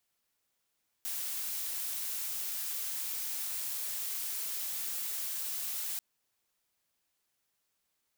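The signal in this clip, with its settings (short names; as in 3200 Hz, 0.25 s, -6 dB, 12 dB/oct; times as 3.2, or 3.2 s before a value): noise blue, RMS -36.5 dBFS 4.94 s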